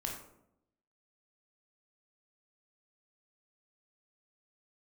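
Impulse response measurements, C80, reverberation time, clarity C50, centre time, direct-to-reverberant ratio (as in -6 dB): 7.5 dB, 0.75 s, 4.5 dB, 37 ms, -1.0 dB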